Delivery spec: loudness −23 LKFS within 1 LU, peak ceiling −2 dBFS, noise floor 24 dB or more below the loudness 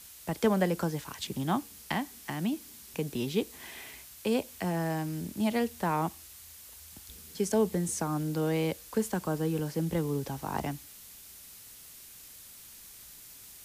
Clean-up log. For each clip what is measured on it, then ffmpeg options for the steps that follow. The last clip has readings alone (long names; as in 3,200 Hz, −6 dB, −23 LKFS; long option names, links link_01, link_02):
background noise floor −50 dBFS; target noise floor −56 dBFS; integrated loudness −32.0 LKFS; sample peak −13.5 dBFS; target loudness −23.0 LKFS
→ -af "afftdn=noise_reduction=6:noise_floor=-50"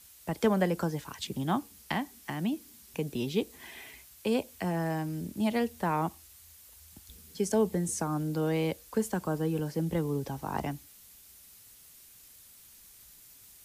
background noise floor −55 dBFS; target noise floor −56 dBFS
→ -af "afftdn=noise_reduction=6:noise_floor=-55"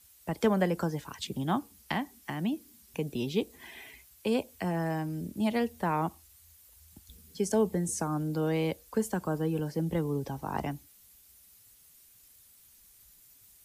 background noise floor −59 dBFS; integrated loudness −32.0 LKFS; sample peak −13.5 dBFS; target loudness −23.0 LKFS
→ -af "volume=9dB"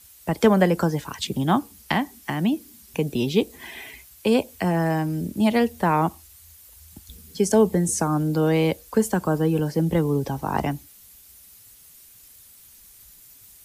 integrated loudness −23.0 LKFS; sample peak −4.5 dBFS; background noise floor −50 dBFS